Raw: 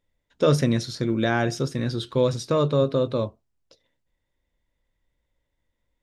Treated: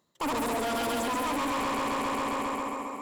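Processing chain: regenerating reverse delay 0.135 s, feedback 84%, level -1 dB; in parallel at +2 dB: limiter -13 dBFS, peak gain reduction 8 dB; on the sum: speed mistake 7.5 ips tape played at 15 ips; reverse; compressor 4:1, threshold -25 dBFS, peak gain reduction 14 dB; reverse; HPF 240 Hz 12 dB/oct; low shelf 490 Hz +4.5 dB; soft clip -31 dBFS, distortion -7 dB; gain +3.5 dB

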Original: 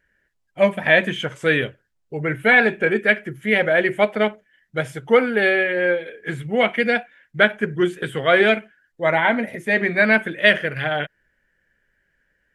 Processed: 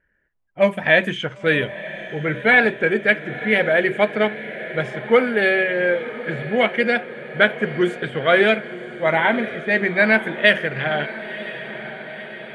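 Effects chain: low-pass opened by the level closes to 1900 Hz, open at -13.5 dBFS; diffused feedback echo 1.001 s, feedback 63%, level -14 dB

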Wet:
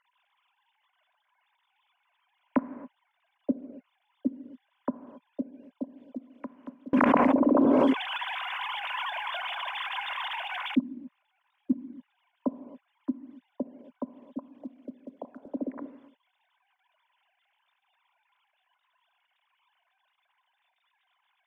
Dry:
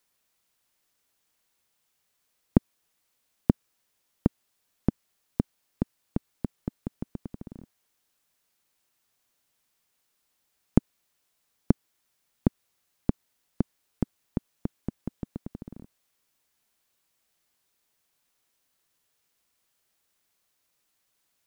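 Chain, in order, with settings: sine-wave speech; tilt +2.5 dB/oct; short-mantissa float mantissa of 4-bit; low shelf 360 Hz +9.5 dB; small resonant body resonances 580/1000 Hz, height 12 dB, ringing for 30 ms; auto swell 0.121 s; non-linear reverb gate 0.3 s flat, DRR 11.5 dB; treble ducked by the level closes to 1900 Hz, closed at -40.5 dBFS; 6.93–10.78 fast leveller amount 100%; gain +8 dB

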